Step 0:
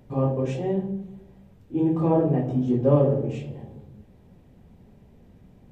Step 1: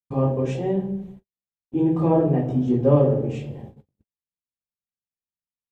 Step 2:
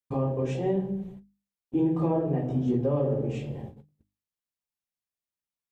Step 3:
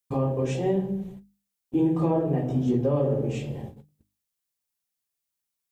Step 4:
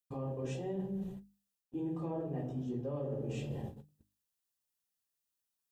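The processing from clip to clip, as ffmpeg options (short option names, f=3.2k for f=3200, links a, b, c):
-af "agate=range=-60dB:threshold=-40dB:ratio=16:detection=peak,volume=2dB"
-af "bandreject=f=50:t=h:w=6,bandreject=f=100:t=h:w=6,bandreject=f=150:t=h:w=6,bandreject=f=200:t=h:w=6,bandreject=f=250:t=h:w=6,bandreject=f=300:t=h:w=6,alimiter=limit=-17dB:level=0:latency=1:release=455"
-af "highshelf=f=4.6k:g=9,volume=2dB"
-af "areverse,acompressor=threshold=-32dB:ratio=6,areverse,asuperstop=centerf=2200:order=4:qfactor=7.8,volume=-3.5dB"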